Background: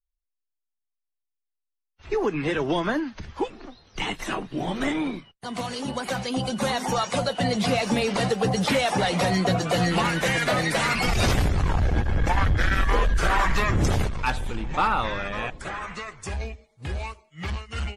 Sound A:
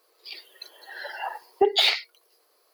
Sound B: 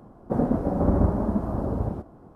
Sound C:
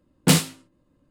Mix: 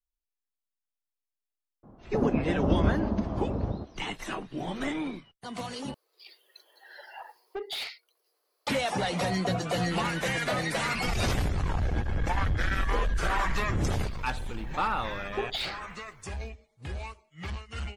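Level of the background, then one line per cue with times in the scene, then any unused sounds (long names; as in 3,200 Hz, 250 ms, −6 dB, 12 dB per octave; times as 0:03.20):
background −6 dB
0:01.83: mix in B −3.5 dB + high-frequency loss of the air 220 metres
0:05.94: overwrite with A −11 dB + soft clipping −19 dBFS
0:13.76: mix in A −13 dB
not used: C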